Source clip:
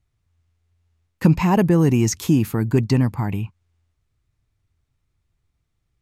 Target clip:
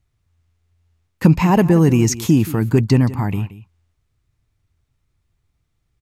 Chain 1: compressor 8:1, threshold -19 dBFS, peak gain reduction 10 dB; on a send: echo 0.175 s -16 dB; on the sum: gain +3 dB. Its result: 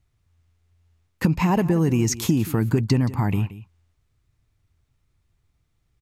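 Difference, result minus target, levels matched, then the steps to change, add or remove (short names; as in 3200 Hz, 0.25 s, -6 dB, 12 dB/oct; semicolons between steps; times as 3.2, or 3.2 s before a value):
compressor: peak gain reduction +10 dB
remove: compressor 8:1, threshold -19 dBFS, peak gain reduction 10 dB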